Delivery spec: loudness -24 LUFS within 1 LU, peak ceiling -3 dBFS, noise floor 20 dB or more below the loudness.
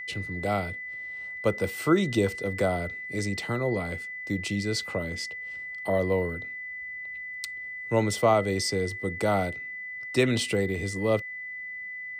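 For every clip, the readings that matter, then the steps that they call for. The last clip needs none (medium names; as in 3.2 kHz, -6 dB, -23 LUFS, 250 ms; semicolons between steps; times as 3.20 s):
steady tone 2 kHz; tone level -35 dBFS; loudness -28.5 LUFS; peak level -8.5 dBFS; loudness target -24.0 LUFS
-> band-stop 2 kHz, Q 30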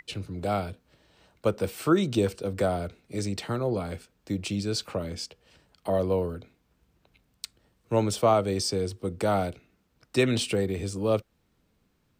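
steady tone not found; loudness -28.5 LUFS; peak level -9.0 dBFS; loudness target -24.0 LUFS
-> trim +4.5 dB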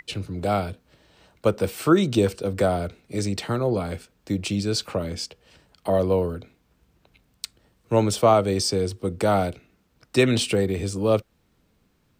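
loudness -24.0 LUFS; peak level -4.5 dBFS; noise floor -66 dBFS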